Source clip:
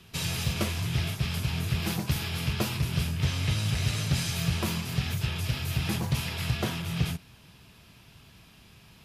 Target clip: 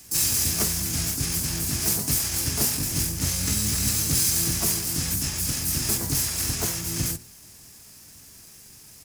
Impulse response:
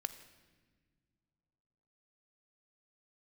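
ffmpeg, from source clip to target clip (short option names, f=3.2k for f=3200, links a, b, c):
-filter_complex "[0:a]bandreject=f=60:t=h:w=6,bandreject=f=120:t=h:w=6,bandreject=f=180:t=h:w=6,bandreject=f=240:t=h:w=6,bandreject=f=300:t=h:w=6,bandreject=f=360:t=h:w=6,bandreject=f=420:t=h:w=6,asplit=3[a][b][c];[b]asetrate=29433,aresample=44100,atempo=1.49831,volume=-2dB[d];[c]asetrate=88200,aresample=44100,atempo=0.5,volume=-3dB[e];[a][d][e]amix=inputs=3:normalize=0,aexciter=amount=7.7:drive=2.7:freq=4.8k,volume=-4dB"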